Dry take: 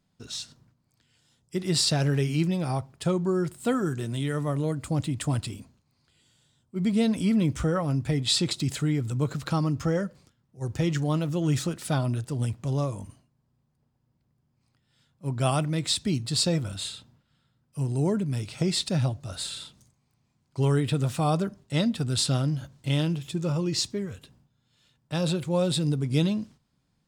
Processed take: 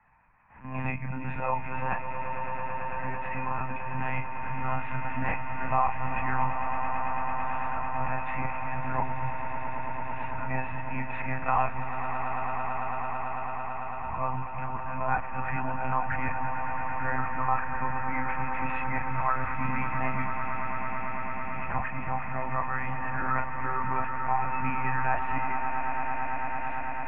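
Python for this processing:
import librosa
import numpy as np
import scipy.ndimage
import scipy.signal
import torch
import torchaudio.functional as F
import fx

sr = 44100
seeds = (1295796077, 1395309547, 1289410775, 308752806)

y = np.flip(x).copy()
y = scipy.signal.sosfilt(scipy.signal.cheby1(6, 6, 2600.0, 'lowpass', fs=sr, output='sos'), y)
y = fx.low_shelf_res(y, sr, hz=680.0, db=-11.0, q=3.0)
y = fx.doubler(y, sr, ms=30.0, db=-4.5)
y = fx.lpc_monotone(y, sr, seeds[0], pitch_hz=130.0, order=16)
y = fx.peak_eq(y, sr, hz=370.0, db=-9.0, octaves=0.43)
y = fx.echo_swell(y, sr, ms=111, loudest=8, wet_db=-13.0)
y = fx.band_squash(y, sr, depth_pct=40)
y = F.gain(torch.from_numpy(y), 6.5).numpy()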